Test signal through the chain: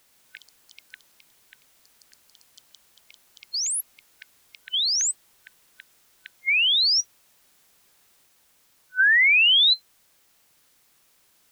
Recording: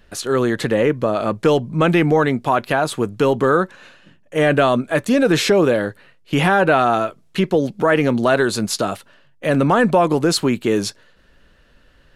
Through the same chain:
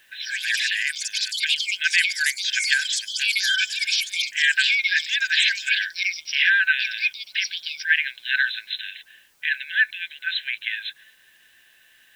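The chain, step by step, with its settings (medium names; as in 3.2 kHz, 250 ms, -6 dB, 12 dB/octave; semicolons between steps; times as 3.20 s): FFT band-pass 1.5–4.1 kHz; added noise white -67 dBFS; ever faster or slower copies 121 ms, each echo +6 st, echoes 3; trim +4.5 dB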